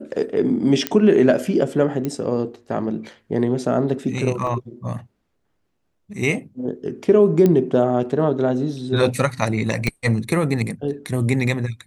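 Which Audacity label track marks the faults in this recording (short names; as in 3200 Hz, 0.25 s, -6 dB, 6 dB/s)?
0.870000	0.870000	pop -5 dBFS
2.050000	2.050000	pop -12 dBFS
4.470000	4.470000	gap 2.3 ms
7.460000	7.460000	pop -7 dBFS
9.870000	9.870000	pop -9 dBFS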